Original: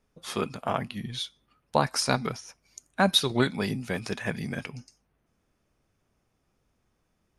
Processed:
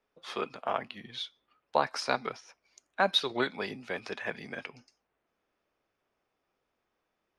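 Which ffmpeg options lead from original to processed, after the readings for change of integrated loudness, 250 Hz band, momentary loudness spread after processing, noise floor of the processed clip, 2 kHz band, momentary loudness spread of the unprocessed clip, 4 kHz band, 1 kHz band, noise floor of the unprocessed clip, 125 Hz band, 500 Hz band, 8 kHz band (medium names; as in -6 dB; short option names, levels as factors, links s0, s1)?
-4.5 dB, -11.0 dB, 15 LU, -82 dBFS, -2.0 dB, 16 LU, -4.5 dB, -2.0 dB, -75 dBFS, -16.5 dB, -3.5 dB, -13.0 dB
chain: -filter_complex "[0:a]acrossover=split=320 4900:gain=0.141 1 0.112[s0][s1][s2];[s0][s1][s2]amix=inputs=3:normalize=0,volume=0.794"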